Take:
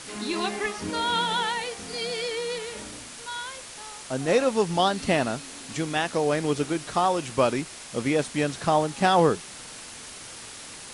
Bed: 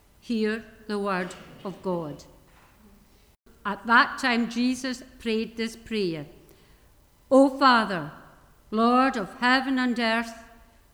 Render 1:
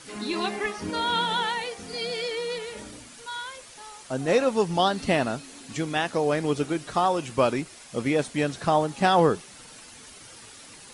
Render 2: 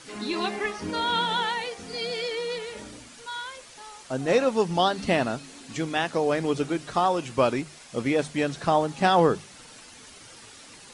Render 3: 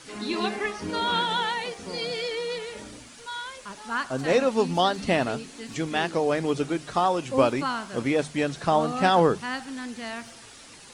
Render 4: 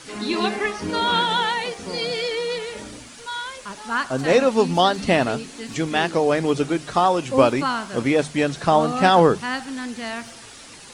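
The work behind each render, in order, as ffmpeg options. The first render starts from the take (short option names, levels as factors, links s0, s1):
-af "afftdn=nr=8:nf=-42"
-af "lowpass=9000,bandreject=f=50:t=h:w=6,bandreject=f=100:t=h:w=6,bandreject=f=150:t=h:w=6,bandreject=f=200:t=h:w=6"
-filter_complex "[1:a]volume=0.282[s0];[0:a][s0]amix=inputs=2:normalize=0"
-af "volume=1.78"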